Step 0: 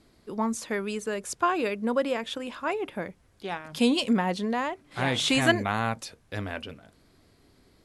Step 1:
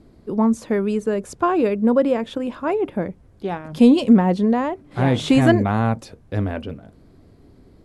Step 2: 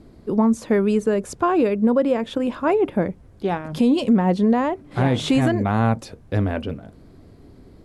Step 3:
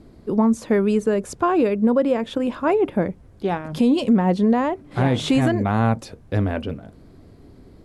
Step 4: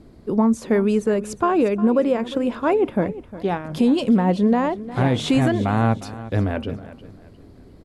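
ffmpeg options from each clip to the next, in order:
-af "acontrast=61,tiltshelf=f=970:g=8.5,volume=-2dB"
-af "alimiter=limit=-12.5dB:level=0:latency=1:release=312,volume=3dB"
-af anull
-af "aecho=1:1:356|712|1068:0.158|0.0507|0.0162"

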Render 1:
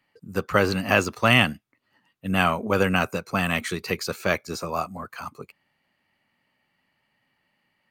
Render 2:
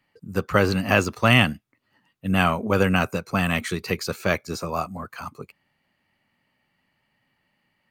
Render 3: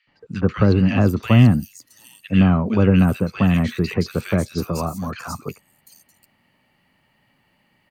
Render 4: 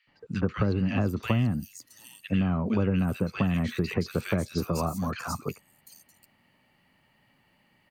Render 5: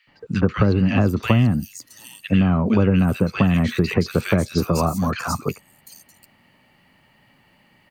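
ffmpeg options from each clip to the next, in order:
-af "lowshelf=f=200:g=5.5"
-filter_complex "[0:a]acrossover=split=330[a][b];[b]acompressor=threshold=-38dB:ratio=2.5[c];[a][c]amix=inputs=2:normalize=0,acrossover=split=1700|5400[d][e][f];[d]adelay=70[g];[f]adelay=740[h];[g][e][h]amix=inputs=3:normalize=0,volume=9dB"
-af "acompressor=threshold=-20dB:ratio=5,volume=-2.5dB"
-af "equalizer=f=12k:t=o:w=0.77:g=-2,volume=8.5dB"

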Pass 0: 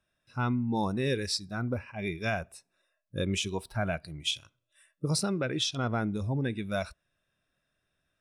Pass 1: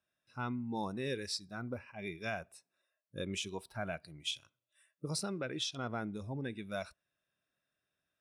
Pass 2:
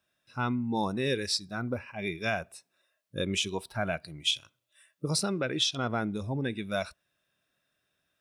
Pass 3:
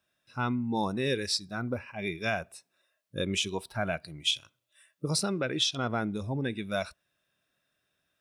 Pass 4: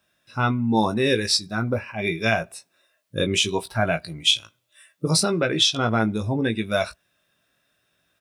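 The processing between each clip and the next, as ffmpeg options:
-af "highpass=f=170:p=1,volume=-7dB"
-af "equalizer=f=3.4k:t=o:w=0.77:g=2.5,volume=8dB"
-af anull
-filter_complex "[0:a]asplit=2[a][b];[b]adelay=18,volume=-7dB[c];[a][c]amix=inputs=2:normalize=0,volume=8dB"

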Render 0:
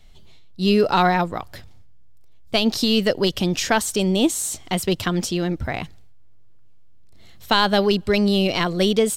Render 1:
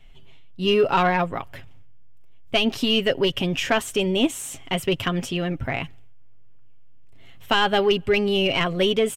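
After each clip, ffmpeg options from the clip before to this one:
-af "highshelf=f=3.5k:t=q:w=3:g=-6,aecho=1:1:7.4:0.47,acontrast=49,volume=-7.5dB"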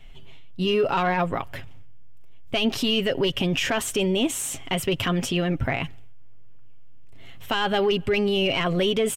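-af "alimiter=limit=-19dB:level=0:latency=1:release=52,volume=4dB"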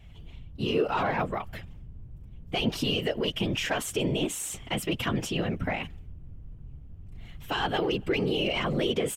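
-af "afftfilt=real='hypot(re,im)*cos(2*PI*random(0))':imag='hypot(re,im)*sin(2*PI*random(1))':win_size=512:overlap=0.75,volume=1dB"

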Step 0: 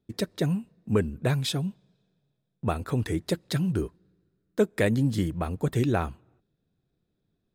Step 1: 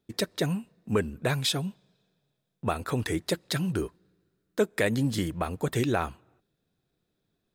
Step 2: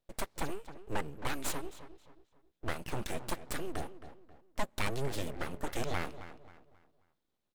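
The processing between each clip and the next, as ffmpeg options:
-filter_complex "[0:a]lowshelf=f=380:g=-9.5,asplit=2[a][b];[b]alimiter=limit=-22dB:level=0:latency=1:release=91,volume=1dB[c];[a][c]amix=inputs=2:normalize=0,volume=-1.5dB"
-filter_complex "[0:a]asplit=2[a][b];[b]adelay=268,lowpass=f=2.1k:p=1,volume=-12.5dB,asplit=2[c][d];[d]adelay=268,lowpass=f=2.1k:p=1,volume=0.38,asplit=2[e][f];[f]adelay=268,lowpass=f=2.1k:p=1,volume=0.38,asplit=2[g][h];[h]adelay=268,lowpass=f=2.1k:p=1,volume=0.38[i];[a][c][e][g][i]amix=inputs=5:normalize=0,aeval=exprs='abs(val(0))':c=same,volume=-5.5dB"

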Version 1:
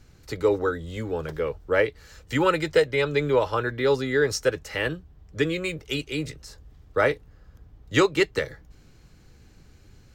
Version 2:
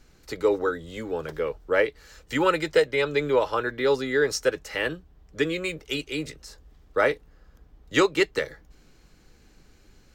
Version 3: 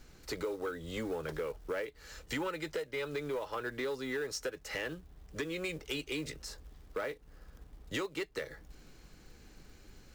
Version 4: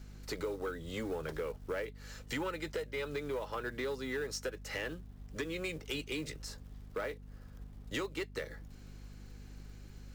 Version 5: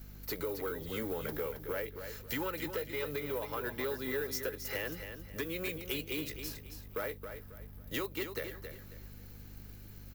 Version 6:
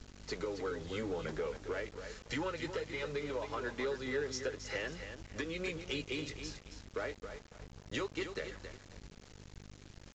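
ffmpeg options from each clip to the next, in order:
-af "equalizer=f=100:w=1.3:g=-12"
-af "acompressor=threshold=-31dB:ratio=16,acrusher=bits=5:mode=log:mix=0:aa=0.000001,asoftclip=type=tanh:threshold=-28.5dB"
-af "aeval=exprs='val(0)+0.00398*(sin(2*PI*50*n/s)+sin(2*PI*2*50*n/s)/2+sin(2*PI*3*50*n/s)/3+sin(2*PI*4*50*n/s)/4+sin(2*PI*5*50*n/s)/5)':c=same,volume=-1dB"
-af "aexciter=amount=10.4:drive=1.5:freq=11k,aecho=1:1:271|542|813:0.376|0.109|0.0316"
-af "flanger=delay=2.6:depth=5.6:regen=-51:speed=0.57:shape=triangular,aeval=exprs='val(0)*gte(abs(val(0)),0.00316)':c=same,aresample=16000,aresample=44100,volume=3.5dB"

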